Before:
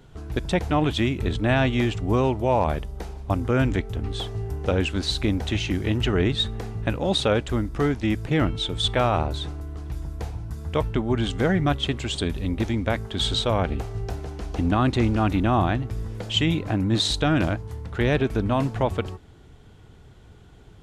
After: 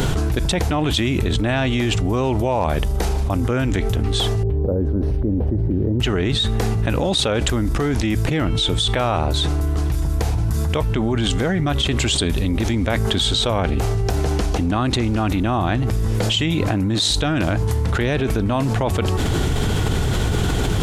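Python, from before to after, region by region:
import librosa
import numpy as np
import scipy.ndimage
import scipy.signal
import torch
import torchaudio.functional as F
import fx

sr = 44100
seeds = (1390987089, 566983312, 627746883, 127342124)

y = fx.chain(x, sr, fx.cheby2_bandstop(low_hz=2500.0, high_hz=7000.0, order=4, stop_db=60),
    fx.band_shelf(hz=970.0, db=-10.5, octaves=1.2),
    fx.resample_linear(factor=3), at=(4.43, 6.0))
y = fx.high_shelf(y, sr, hz=5100.0, db=7.5)
y = fx.env_flatten(y, sr, amount_pct=100)
y = y * librosa.db_to_amplitude(-1.5)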